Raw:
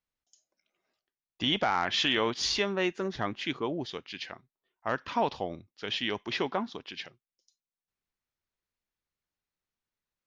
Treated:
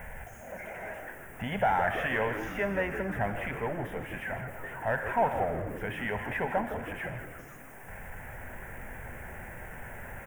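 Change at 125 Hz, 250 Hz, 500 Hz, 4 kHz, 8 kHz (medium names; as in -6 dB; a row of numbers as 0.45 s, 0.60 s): +5.5 dB, -2.0 dB, +1.5 dB, -18.0 dB, -10.0 dB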